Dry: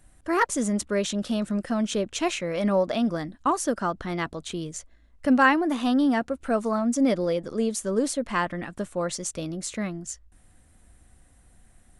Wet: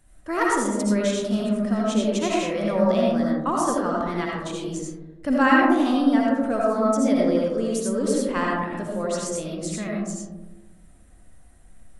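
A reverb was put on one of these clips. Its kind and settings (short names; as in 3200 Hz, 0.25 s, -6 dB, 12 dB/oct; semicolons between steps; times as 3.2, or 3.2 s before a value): digital reverb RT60 1.2 s, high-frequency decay 0.25×, pre-delay 40 ms, DRR -3.5 dB; gain -3 dB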